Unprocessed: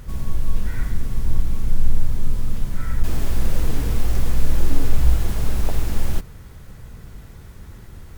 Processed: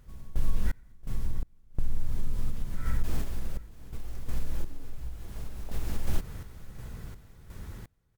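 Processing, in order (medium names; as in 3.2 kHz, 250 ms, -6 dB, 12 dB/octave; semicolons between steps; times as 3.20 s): compression, threshold -18 dBFS, peak gain reduction 11.5 dB; random-step tremolo 2.8 Hz, depth 100%; on a send: feedback delay 675 ms, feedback 25%, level -20 dB; on the sum: trim +1 dB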